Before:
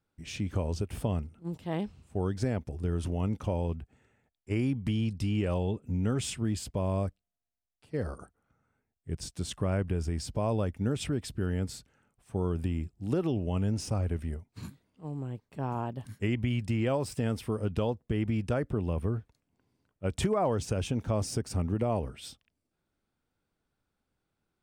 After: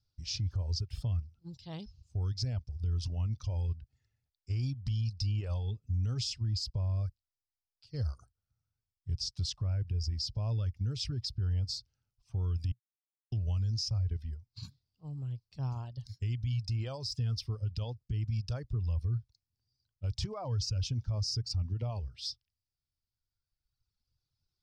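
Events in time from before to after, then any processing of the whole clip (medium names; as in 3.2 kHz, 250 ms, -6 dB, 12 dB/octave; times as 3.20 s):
12.72–13.32 s: mute
whole clip: reverb removal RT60 1.9 s; FFT filter 120 Hz 0 dB, 180 Hz -16 dB, 320 Hz -21 dB, 1.3 kHz -17 dB, 1.9 kHz -20 dB, 3.5 kHz -6 dB, 5 kHz +8 dB, 8.8 kHz -21 dB; peak limiter -32.5 dBFS; trim +6.5 dB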